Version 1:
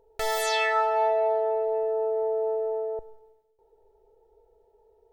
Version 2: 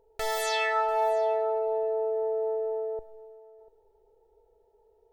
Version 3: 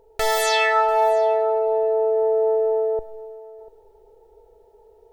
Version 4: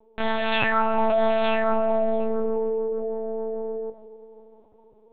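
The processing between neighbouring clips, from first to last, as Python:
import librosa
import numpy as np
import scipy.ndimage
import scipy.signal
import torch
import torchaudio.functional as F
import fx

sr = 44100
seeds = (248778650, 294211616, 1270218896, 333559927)

y1 = x + 10.0 ** (-20.0 / 20.0) * np.pad(x, (int(692 * sr / 1000.0), 0))[:len(x)]
y1 = y1 * 10.0 ** (-2.5 / 20.0)
y2 = fx.rider(y1, sr, range_db=10, speed_s=2.0)
y2 = y2 * 10.0 ** (8.0 / 20.0)
y3 = y2 + 10.0 ** (-5.5 / 20.0) * np.pad(y2, (int(911 * sr / 1000.0), 0))[:len(y2)]
y3 = fx.lpc_vocoder(y3, sr, seeds[0], excitation='pitch_kept', order=8)
y3 = y3 * 10.0 ** (-3.0 / 20.0)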